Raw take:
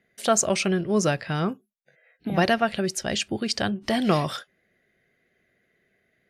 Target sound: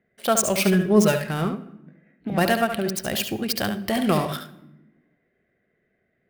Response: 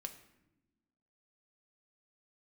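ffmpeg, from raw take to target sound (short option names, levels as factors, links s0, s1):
-filter_complex "[0:a]asettb=1/sr,asplit=3[s0][s1][s2];[s0]atrim=end=0.584[s3];[s1]atrim=start=0.58:end=1.27,asetpts=PTS-STARTPTS,afade=t=in:d=0.004:c=qsin,afade=t=out:st=0.686:d=0.004:c=qsin,aecho=1:1:4.8:0.82,atrim=end_sample=30429[s4];[s2]atrim=start=1.266[s5];[s3][s4]acrossfade=d=0.004:c1=hsin:c2=qsin[s6];[s6][s5]acrossfade=d=0.004:c1=qsin:c2=hsin,adynamicsmooth=sensitivity=6:basefreq=2000,aexciter=amount=2.9:drive=8.5:freq=8800,asplit=2[s7][s8];[1:a]atrim=start_sample=2205,adelay=71[s9];[s8][s9]afir=irnorm=-1:irlink=0,volume=0.631[s10];[s7][s10]amix=inputs=2:normalize=0"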